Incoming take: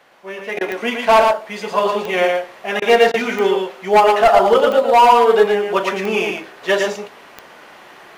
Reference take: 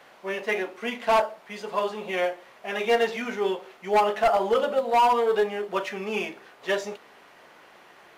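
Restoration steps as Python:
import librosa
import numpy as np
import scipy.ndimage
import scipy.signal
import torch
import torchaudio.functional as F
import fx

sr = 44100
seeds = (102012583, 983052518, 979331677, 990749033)

y = fx.fix_declick_ar(x, sr, threshold=10.0)
y = fx.fix_interpolate(y, sr, at_s=(0.59, 2.8, 3.12), length_ms=18.0)
y = fx.fix_echo_inverse(y, sr, delay_ms=114, level_db=-4.0)
y = fx.gain(y, sr, db=fx.steps((0.0, 0.0), (0.57, -9.0)))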